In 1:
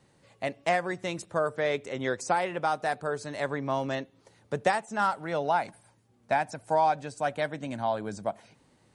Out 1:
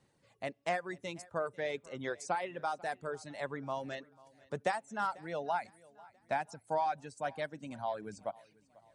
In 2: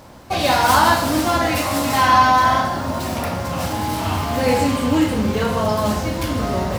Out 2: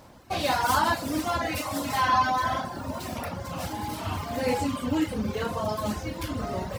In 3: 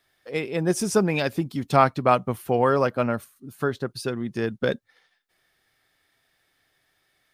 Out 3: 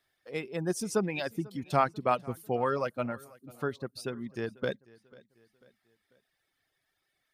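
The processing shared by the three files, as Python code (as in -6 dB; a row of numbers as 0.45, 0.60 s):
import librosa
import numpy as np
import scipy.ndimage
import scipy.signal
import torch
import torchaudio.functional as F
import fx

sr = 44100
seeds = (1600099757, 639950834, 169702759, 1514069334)

y = fx.dereverb_blind(x, sr, rt60_s=1.1)
y = fx.echo_feedback(y, sr, ms=493, feedback_pct=45, wet_db=-23.0)
y = y * 10.0 ** (-7.5 / 20.0)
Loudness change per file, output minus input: -8.5, -10.0, -8.5 LU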